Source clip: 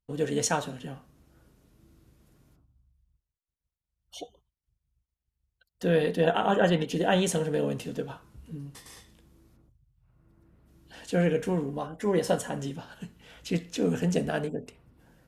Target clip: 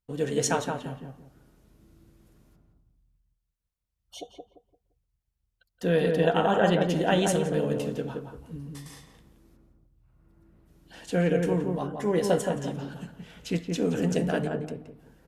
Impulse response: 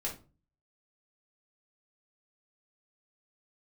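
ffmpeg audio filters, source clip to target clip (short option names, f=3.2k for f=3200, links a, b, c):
-filter_complex "[0:a]asplit=2[a][b];[b]adelay=172,lowpass=f=1.2k:p=1,volume=-3dB,asplit=2[c][d];[d]adelay=172,lowpass=f=1.2k:p=1,volume=0.3,asplit=2[e][f];[f]adelay=172,lowpass=f=1.2k:p=1,volume=0.3,asplit=2[g][h];[h]adelay=172,lowpass=f=1.2k:p=1,volume=0.3[i];[a][c][e][g][i]amix=inputs=5:normalize=0"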